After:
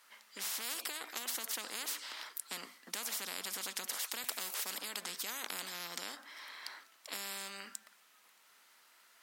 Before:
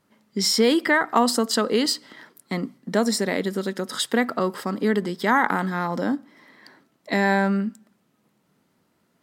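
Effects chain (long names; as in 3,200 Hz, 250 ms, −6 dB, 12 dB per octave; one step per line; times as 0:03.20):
high-pass filter 1,400 Hz 12 dB per octave
0:04.24–0:04.78: spectral tilt +4 dB per octave
every bin compressed towards the loudest bin 10 to 1
level −7.5 dB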